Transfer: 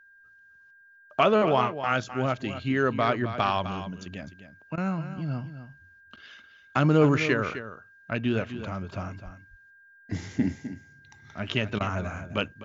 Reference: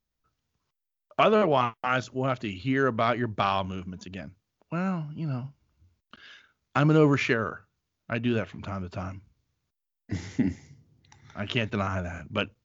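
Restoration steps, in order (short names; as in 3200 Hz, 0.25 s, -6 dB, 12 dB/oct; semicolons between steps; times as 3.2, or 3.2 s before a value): notch 1600 Hz, Q 30; 9.24–9.36 HPF 140 Hz 24 dB/oct; interpolate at 4.76/11.79, 14 ms; inverse comb 0.256 s -11.5 dB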